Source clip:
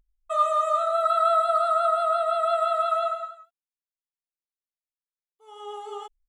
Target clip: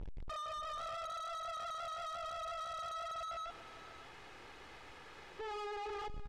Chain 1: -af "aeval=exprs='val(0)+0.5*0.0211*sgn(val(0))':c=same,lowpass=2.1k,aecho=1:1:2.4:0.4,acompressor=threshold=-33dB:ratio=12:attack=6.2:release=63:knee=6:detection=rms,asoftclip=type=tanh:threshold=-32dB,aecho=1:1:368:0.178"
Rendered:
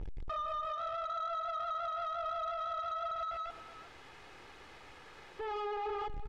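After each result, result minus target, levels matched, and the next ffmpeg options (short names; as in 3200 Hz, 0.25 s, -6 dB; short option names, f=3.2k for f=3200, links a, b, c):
echo 0.194 s early; soft clip: distortion -9 dB
-af "aeval=exprs='val(0)+0.5*0.0211*sgn(val(0))':c=same,lowpass=2.1k,aecho=1:1:2.4:0.4,acompressor=threshold=-33dB:ratio=12:attack=6.2:release=63:knee=6:detection=rms,asoftclip=type=tanh:threshold=-32dB,aecho=1:1:562:0.178"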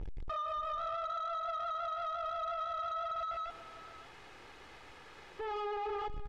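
soft clip: distortion -9 dB
-af "aeval=exprs='val(0)+0.5*0.0211*sgn(val(0))':c=same,lowpass=2.1k,aecho=1:1:2.4:0.4,acompressor=threshold=-33dB:ratio=12:attack=6.2:release=63:knee=6:detection=rms,asoftclip=type=tanh:threshold=-41dB,aecho=1:1:562:0.178"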